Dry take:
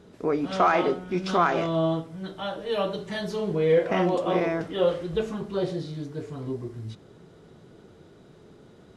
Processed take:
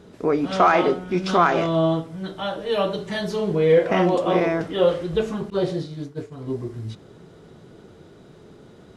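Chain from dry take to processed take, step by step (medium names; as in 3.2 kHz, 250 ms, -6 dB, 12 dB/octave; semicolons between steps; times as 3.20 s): 5.50–6.52 s: expander -30 dBFS; trim +4.5 dB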